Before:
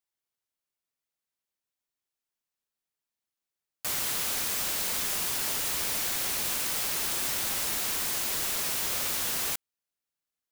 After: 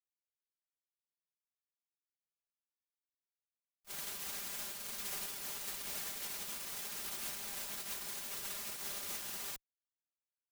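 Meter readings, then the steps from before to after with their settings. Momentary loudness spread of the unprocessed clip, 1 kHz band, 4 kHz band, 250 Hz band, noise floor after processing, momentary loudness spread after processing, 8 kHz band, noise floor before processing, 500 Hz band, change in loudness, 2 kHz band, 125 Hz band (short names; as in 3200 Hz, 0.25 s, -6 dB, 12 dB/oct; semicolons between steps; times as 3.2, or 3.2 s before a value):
1 LU, -12.5 dB, -12.5 dB, -12.5 dB, under -85 dBFS, 2 LU, -12.5 dB, under -85 dBFS, -12.5 dB, -12.5 dB, -12.5 dB, -14.5 dB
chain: minimum comb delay 5 ms; gate -28 dBFS, range -46 dB; gain +8.5 dB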